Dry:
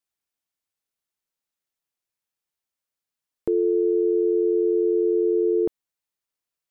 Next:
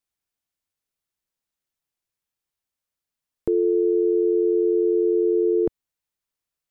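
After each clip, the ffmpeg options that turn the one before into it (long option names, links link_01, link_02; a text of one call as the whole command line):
ffmpeg -i in.wav -af "lowshelf=frequency=140:gain=8" out.wav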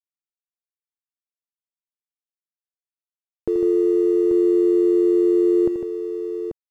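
ffmpeg -i in.wav -af "aeval=exprs='sgn(val(0))*max(abs(val(0))-0.00562,0)':channel_layout=same,aecho=1:1:83|152|837:0.316|0.422|0.447" out.wav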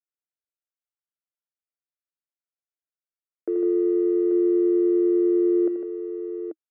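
ffmpeg -i in.wav -af "highpass=frequency=300:width=0.5412,highpass=frequency=300:width=1.3066,equalizer=frequency=320:width_type=q:width=4:gain=8,equalizer=frequency=630:width_type=q:width=4:gain=6,equalizer=frequency=980:width_type=q:width=4:gain=-9,equalizer=frequency=1400:width_type=q:width=4:gain=8,lowpass=frequency=2300:width=0.5412,lowpass=frequency=2300:width=1.3066,volume=-7dB" out.wav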